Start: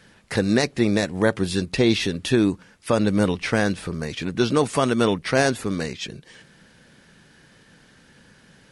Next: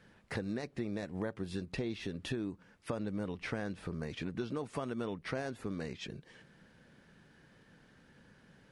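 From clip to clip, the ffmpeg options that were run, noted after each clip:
-af "highshelf=f=3k:g=-10.5,acompressor=threshold=-27dB:ratio=6,volume=-7.5dB"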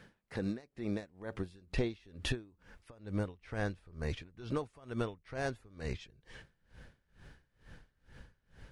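-af "asubboost=boost=10:cutoff=64,aeval=exprs='val(0)*pow(10,-26*(0.5-0.5*cos(2*PI*2.2*n/s))/20)':c=same,volume=6dB"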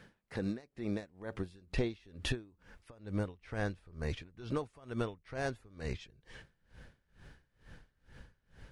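-af anull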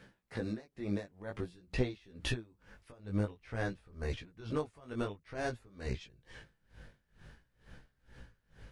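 -af "flanger=delay=15.5:depth=5:speed=0.51,volume=3dB"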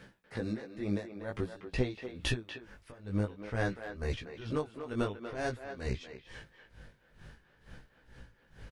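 -filter_complex "[0:a]tremolo=f=1.4:d=0.29,asplit=2[a][b];[b]adelay=240,highpass=300,lowpass=3.4k,asoftclip=type=hard:threshold=-28dB,volume=-8dB[c];[a][c]amix=inputs=2:normalize=0,volume=4dB"

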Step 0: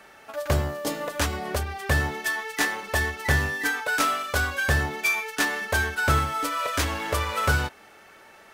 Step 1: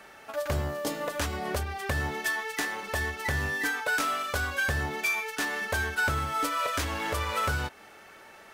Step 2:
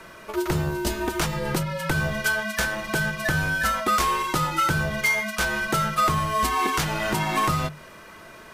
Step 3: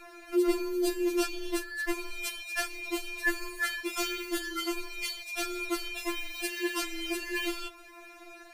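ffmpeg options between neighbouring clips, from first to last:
-af "alimiter=limit=-18.5dB:level=0:latency=1:release=269"
-af "afreqshift=-230,bandreject=f=50:t=h:w=6,bandreject=f=100:t=h:w=6,bandreject=f=150:t=h:w=6,volume=6dB"
-af "afftfilt=real='re*4*eq(mod(b,16),0)':imag='im*4*eq(mod(b,16),0)':win_size=2048:overlap=0.75,volume=-3dB"

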